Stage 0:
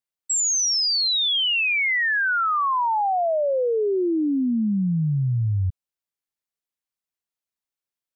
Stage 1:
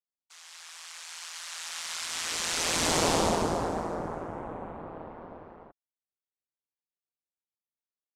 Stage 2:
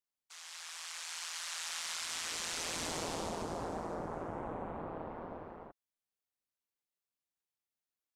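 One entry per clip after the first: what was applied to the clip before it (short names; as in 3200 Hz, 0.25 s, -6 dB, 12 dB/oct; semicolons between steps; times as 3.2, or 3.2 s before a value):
band-pass 770 Hz, Q 1.7; noise vocoder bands 2; ring modulator 83 Hz
compressor 6:1, threshold -36 dBFS, peak gain reduction 14.5 dB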